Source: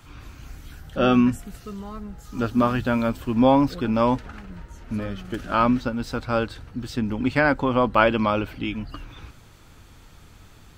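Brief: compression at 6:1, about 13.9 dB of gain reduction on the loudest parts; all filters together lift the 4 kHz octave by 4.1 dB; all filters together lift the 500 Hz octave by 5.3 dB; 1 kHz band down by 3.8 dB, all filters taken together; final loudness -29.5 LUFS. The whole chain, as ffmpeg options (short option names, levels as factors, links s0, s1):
-af "equalizer=f=500:t=o:g=8.5,equalizer=f=1000:t=o:g=-8,equalizer=f=4000:t=o:g=6,acompressor=threshold=0.0631:ratio=6"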